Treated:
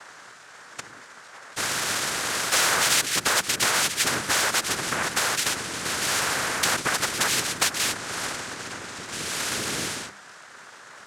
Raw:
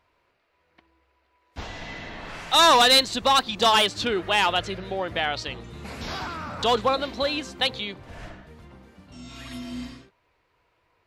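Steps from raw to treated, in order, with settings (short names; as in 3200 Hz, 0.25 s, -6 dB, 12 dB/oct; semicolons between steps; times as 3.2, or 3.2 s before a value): compressor, threshold -27 dBFS, peak gain reduction 12 dB; tilt shelf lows -4.5 dB; noise vocoder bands 3; bell 1500 Hz +10 dB 0.71 oct; notches 50/100/150/200 Hz; spectral compressor 2:1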